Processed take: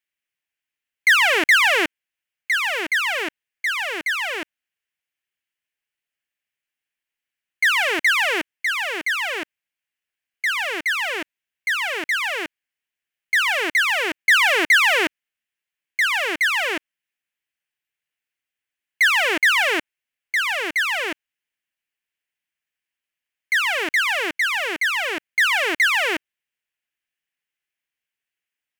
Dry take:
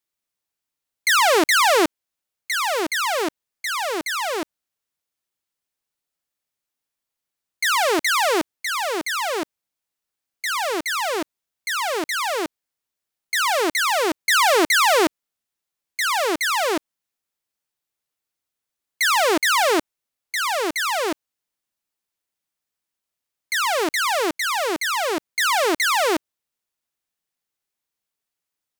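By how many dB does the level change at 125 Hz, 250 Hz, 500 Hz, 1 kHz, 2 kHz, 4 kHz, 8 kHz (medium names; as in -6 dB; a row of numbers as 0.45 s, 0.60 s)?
no reading, -6.5 dB, -6.5 dB, -5.5 dB, +5.0 dB, +0.5 dB, -6.5 dB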